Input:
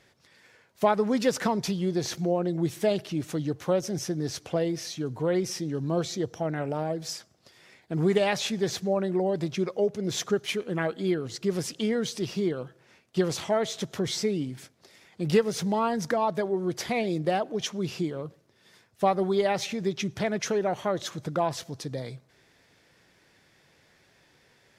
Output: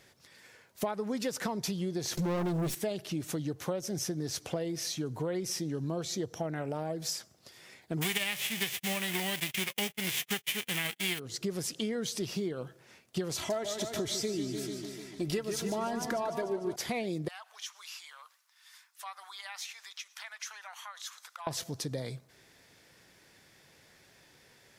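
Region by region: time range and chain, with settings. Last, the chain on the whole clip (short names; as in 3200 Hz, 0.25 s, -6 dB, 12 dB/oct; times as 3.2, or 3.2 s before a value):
2.17–2.75 minimum comb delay 5.3 ms + sample leveller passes 3
8.01–11.18 spectral whitening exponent 0.3 + band shelf 2500 Hz +12 dB 1.1 oct + gate -33 dBFS, range -33 dB
13.35–16.76 low shelf 120 Hz +6.5 dB + comb 3 ms, depth 51% + warbling echo 0.148 s, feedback 64%, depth 111 cents, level -9.5 dB
17.28–21.47 steep high-pass 970 Hz + compressor 2:1, threshold -48 dBFS
whole clip: high shelf 7300 Hz +10 dB; compressor 5:1, threshold -31 dBFS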